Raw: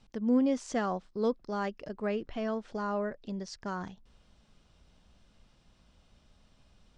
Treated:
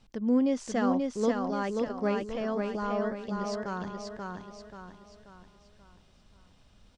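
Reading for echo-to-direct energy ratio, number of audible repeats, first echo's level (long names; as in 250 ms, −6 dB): −2.5 dB, 5, −3.5 dB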